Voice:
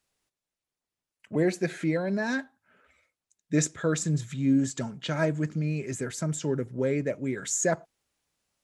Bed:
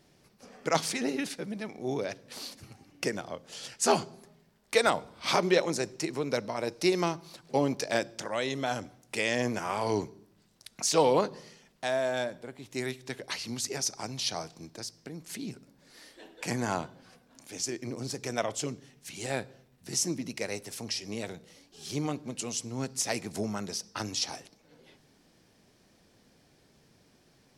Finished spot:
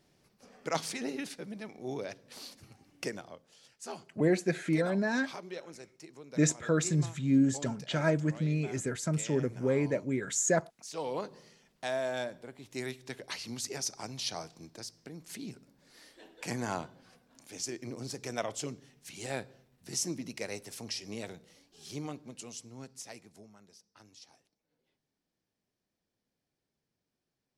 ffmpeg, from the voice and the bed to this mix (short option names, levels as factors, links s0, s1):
-filter_complex "[0:a]adelay=2850,volume=0.841[s0];[1:a]volume=2.66,afade=t=out:st=3.08:d=0.48:silence=0.237137,afade=t=in:st=10.86:d=0.97:silence=0.199526,afade=t=out:st=21.19:d=2.3:silence=0.105925[s1];[s0][s1]amix=inputs=2:normalize=0"